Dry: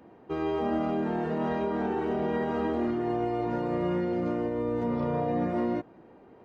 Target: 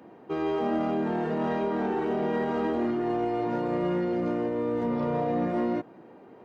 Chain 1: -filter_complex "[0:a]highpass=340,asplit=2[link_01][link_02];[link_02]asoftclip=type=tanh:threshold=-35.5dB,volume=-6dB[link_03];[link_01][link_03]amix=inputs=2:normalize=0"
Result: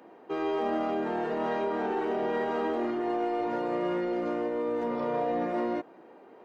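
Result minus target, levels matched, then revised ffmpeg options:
125 Hz band −8.5 dB
-filter_complex "[0:a]highpass=130,asplit=2[link_01][link_02];[link_02]asoftclip=type=tanh:threshold=-35.5dB,volume=-6dB[link_03];[link_01][link_03]amix=inputs=2:normalize=0"

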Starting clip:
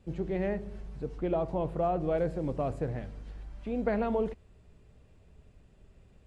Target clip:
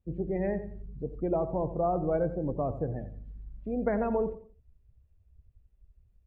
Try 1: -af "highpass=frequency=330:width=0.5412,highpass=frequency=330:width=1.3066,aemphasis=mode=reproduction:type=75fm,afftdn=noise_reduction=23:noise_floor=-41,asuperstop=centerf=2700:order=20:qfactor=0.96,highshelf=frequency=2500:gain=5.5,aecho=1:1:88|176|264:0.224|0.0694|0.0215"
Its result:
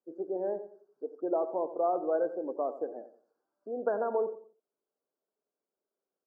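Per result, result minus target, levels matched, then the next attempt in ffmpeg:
250 Hz band −6.0 dB; 2,000 Hz band −2.5 dB
-af "aemphasis=mode=reproduction:type=75fm,afftdn=noise_reduction=23:noise_floor=-41,asuperstop=centerf=2700:order=20:qfactor=0.96,highshelf=frequency=2500:gain=5.5,aecho=1:1:88|176|264:0.224|0.0694|0.0215"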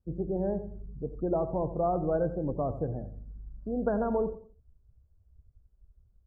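2,000 Hz band −4.0 dB
-af "aemphasis=mode=reproduction:type=75fm,afftdn=noise_reduction=23:noise_floor=-41,highshelf=frequency=2500:gain=5.5,aecho=1:1:88|176|264:0.224|0.0694|0.0215"

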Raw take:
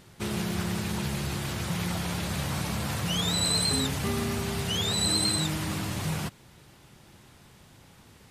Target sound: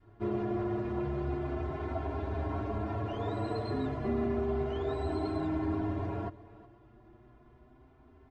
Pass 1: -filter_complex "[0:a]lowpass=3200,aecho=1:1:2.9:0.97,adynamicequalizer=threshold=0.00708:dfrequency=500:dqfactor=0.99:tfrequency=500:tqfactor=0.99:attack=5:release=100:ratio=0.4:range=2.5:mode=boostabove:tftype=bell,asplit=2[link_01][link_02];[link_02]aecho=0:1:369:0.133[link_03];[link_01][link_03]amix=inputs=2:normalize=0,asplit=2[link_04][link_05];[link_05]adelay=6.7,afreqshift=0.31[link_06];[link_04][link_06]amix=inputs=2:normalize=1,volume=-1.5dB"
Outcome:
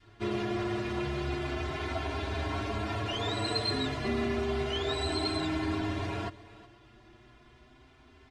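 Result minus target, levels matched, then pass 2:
4,000 Hz band +17.0 dB
-filter_complex "[0:a]lowpass=990,aecho=1:1:2.9:0.97,adynamicequalizer=threshold=0.00708:dfrequency=500:dqfactor=0.99:tfrequency=500:tqfactor=0.99:attack=5:release=100:ratio=0.4:range=2.5:mode=boostabove:tftype=bell,asplit=2[link_01][link_02];[link_02]aecho=0:1:369:0.133[link_03];[link_01][link_03]amix=inputs=2:normalize=0,asplit=2[link_04][link_05];[link_05]adelay=6.7,afreqshift=0.31[link_06];[link_04][link_06]amix=inputs=2:normalize=1,volume=-1.5dB"

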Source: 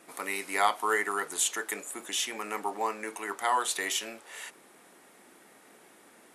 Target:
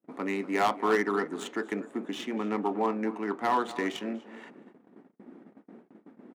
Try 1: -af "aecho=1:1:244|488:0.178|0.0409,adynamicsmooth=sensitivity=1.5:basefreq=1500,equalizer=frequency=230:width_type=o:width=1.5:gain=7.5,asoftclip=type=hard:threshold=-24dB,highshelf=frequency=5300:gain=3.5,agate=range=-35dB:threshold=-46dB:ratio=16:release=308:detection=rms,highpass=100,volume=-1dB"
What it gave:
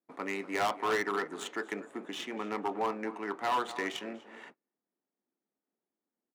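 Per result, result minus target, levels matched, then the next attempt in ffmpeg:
hard clipping: distortion +8 dB; 250 Hz band −4.0 dB
-af "aecho=1:1:244|488:0.178|0.0409,adynamicsmooth=sensitivity=1.5:basefreq=1500,equalizer=frequency=230:width_type=o:width=1.5:gain=7.5,asoftclip=type=hard:threshold=-17dB,highshelf=frequency=5300:gain=3.5,agate=range=-35dB:threshold=-46dB:ratio=16:release=308:detection=rms,highpass=100,volume=-1dB"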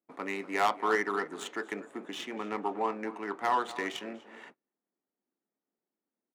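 250 Hz band −5.0 dB
-af "aecho=1:1:244|488:0.178|0.0409,adynamicsmooth=sensitivity=1.5:basefreq=1500,equalizer=frequency=230:width_type=o:width=1.5:gain=17.5,asoftclip=type=hard:threshold=-17dB,highshelf=frequency=5300:gain=3.5,agate=range=-35dB:threshold=-46dB:ratio=16:release=308:detection=rms,highpass=100,volume=-1dB"

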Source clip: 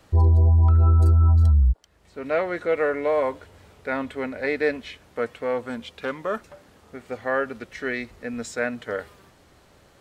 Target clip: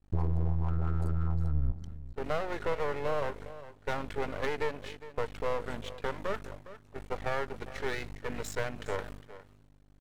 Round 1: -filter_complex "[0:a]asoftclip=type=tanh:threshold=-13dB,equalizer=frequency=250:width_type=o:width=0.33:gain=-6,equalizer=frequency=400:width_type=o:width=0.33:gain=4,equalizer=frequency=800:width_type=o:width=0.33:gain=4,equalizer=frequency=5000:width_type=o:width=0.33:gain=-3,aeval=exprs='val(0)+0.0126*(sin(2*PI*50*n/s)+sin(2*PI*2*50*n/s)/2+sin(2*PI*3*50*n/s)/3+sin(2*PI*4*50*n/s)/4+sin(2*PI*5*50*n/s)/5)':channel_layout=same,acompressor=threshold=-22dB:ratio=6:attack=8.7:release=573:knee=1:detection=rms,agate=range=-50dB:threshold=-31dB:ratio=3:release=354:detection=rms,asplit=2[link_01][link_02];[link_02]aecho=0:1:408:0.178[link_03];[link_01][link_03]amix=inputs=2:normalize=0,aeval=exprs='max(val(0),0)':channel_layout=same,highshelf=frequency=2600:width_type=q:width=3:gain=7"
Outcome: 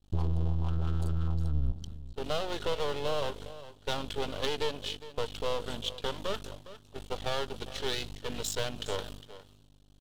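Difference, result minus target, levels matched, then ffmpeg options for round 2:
4,000 Hz band +11.0 dB; soft clipping: distortion +13 dB
-filter_complex "[0:a]asoftclip=type=tanh:threshold=-5.5dB,equalizer=frequency=250:width_type=o:width=0.33:gain=-6,equalizer=frequency=400:width_type=o:width=0.33:gain=4,equalizer=frequency=800:width_type=o:width=0.33:gain=4,equalizer=frequency=5000:width_type=o:width=0.33:gain=-3,aeval=exprs='val(0)+0.0126*(sin(2*PI*50*n/s)+sin(2*PI*2*50*n/s)/2+sin(2*PI*3*50*n/s)/3+sin(2*PI*4*50*n/s)/4+sin(2*PI*5*50*n/s)/5)':channel_layout=same,acompressor=threshold=-22dB:ratio=6:attack=8.7:release=573:knee=1:detection=rms,agate=range=-50dB:threshold=-31dB:ratio=3:release=354:detection=rms,asplit=2[link_01][link_02];[link_02]aecho=0:1:408:0.178[link_03];[link_01][link_03]amix=inputs=2:normalize=0,aeval=exprs='max(val(0),0)':channel_layout=same"

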